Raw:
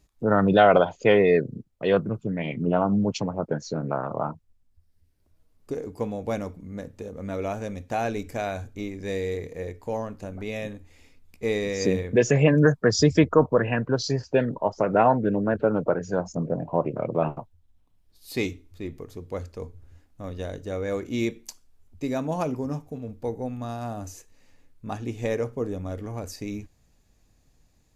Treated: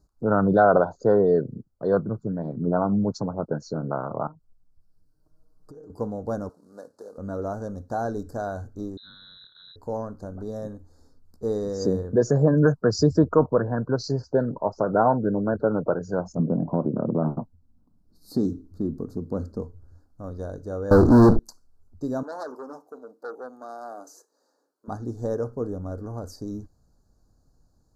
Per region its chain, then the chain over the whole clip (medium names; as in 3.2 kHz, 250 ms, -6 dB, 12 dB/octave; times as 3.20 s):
4.27–5.90 s: compression 4:1, threshold -48 dBFS + comb 6.5 ms, depth 88%
6.49–7.18 s: CVSD coder 64 kbps + high-pass 490 Hz
8.97–9.76 s: tilt shelf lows +4 dB, about 1.5 kHz + compression 2.5:1, threshold -31 dBFS + frequency inversion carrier 3.9 kHz
16.39–19.62 s: peaking EQ 220 Hz +15 dB 1.3 oct + compression 2:1, threshold -22 dBFS
20.91–21.39 s: tilt EQ -3.5 dB/octave + waveshaping leveller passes 5
22.23–24.88 s: high-pass 350 Hz 24 dB/octave + transformer saturation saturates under 3 kHz
whole clip: elliptic band-stop 1.5–4.3 kHz, stop band 40 dB; treble shelf 4.5 kHz -8 dB